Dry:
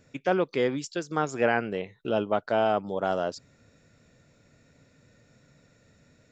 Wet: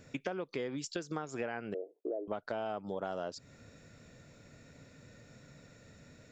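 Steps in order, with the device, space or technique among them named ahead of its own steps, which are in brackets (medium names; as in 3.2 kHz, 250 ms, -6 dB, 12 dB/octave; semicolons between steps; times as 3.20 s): 1.74–2.28 s: elliptic band-pass 310–680 Hz, stop band 50 dB; serial compression, leveller first (compression 2:1, threshold -27 dBFS, peak gain reduction 5.5 dB; compression 5:1, threshold -39 dBFS, peak gain reduction 14.5 dB); trim +3.5 dB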